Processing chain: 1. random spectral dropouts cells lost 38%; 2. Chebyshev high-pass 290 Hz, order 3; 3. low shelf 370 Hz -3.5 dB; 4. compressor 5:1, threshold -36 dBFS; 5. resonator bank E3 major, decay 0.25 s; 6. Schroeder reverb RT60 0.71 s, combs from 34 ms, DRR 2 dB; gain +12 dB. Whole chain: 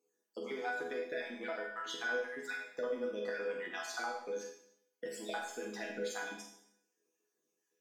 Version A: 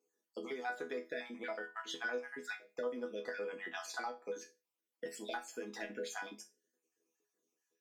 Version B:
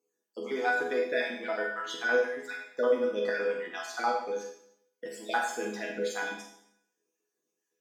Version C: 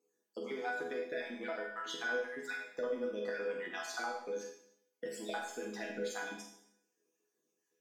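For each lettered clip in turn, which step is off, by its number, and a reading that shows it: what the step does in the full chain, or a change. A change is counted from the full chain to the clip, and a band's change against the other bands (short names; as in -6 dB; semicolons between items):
6, loudness change -3.0 LU; 4, mean gain reduction 6.0 dB; 3, 250 Hz band +1.5 dB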